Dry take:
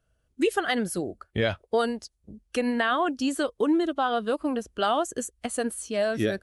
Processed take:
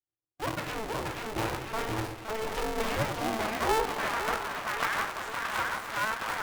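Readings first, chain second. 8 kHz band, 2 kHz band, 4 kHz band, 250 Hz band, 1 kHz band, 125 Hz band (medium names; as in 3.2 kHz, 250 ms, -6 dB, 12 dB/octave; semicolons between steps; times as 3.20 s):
-4.0 dB, 0.0 dB, -2.5 dB, -11.5 dB, -1.5 dB, -0.5 dB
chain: spectral sustain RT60 0.39 s; low-pass that closes with the level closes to 1.4 kHz, closed at -20 dBFS; gate -42 dBFS, range -25 dB; in parallel at -12 dB: decimation with a swept rate 16×, swing 100% 0.86 Hz; on the sum: full-wave rectifier; ever faster or slower copies 444 ms, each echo -1 st, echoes 2; high-pass sweep 91 Hz -> 1.2 kHz, 1.79–4.39 s; on a send: two-band feedback delay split 630 Hz, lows 95 ms, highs 516 ms, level -8 dB; on the sum: polarity switched at an audio rate 220 Hz; trim -7 dB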